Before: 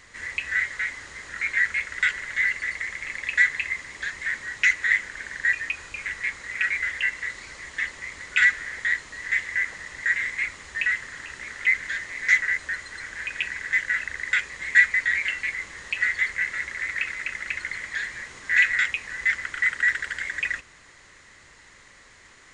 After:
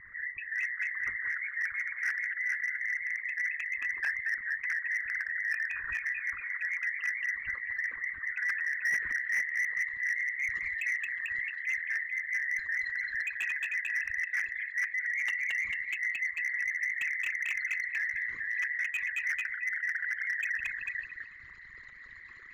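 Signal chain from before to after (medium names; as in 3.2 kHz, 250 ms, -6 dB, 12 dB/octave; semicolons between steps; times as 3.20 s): resonances exaggerated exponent 3; reverse; compression 16:1, threshold -30 dBFS, peak gain reduction 19.5 dB; reverse; low-pass sweep 1.5 kHz -> 4.6 kHz, 8.57–9.98 s; on a send: repeats whose band climbs or falls 222 ms, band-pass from 3.4 kHz, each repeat -0.7 oct, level 0 dB; on the sum: slew-rate limiter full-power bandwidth 110 Hz; trim -1.5 dB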